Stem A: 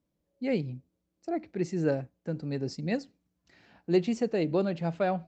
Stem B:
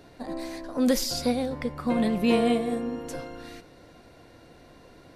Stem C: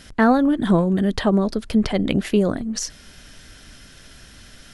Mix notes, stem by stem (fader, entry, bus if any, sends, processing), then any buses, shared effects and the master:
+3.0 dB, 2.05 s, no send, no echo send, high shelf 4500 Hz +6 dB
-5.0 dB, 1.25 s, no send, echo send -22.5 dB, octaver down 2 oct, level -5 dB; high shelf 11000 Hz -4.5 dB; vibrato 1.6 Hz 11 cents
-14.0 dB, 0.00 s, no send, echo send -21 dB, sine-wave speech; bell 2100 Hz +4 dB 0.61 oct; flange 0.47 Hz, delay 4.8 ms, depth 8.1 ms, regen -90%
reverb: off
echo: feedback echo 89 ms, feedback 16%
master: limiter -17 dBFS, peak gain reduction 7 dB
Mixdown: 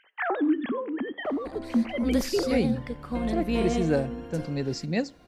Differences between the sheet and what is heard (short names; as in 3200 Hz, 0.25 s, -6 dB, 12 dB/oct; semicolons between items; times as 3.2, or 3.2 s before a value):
stem C -14.0 dB -> -5.0 dB; master: missing limiter -17 dBFS, peak gain reduction 7 dB